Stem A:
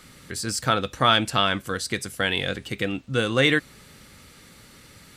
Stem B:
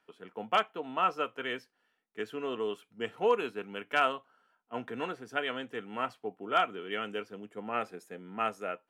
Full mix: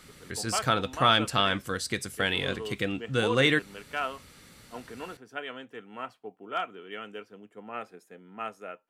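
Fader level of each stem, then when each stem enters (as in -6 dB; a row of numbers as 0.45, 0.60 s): -3.5, -4.5 dB; 0.00, 0.00 s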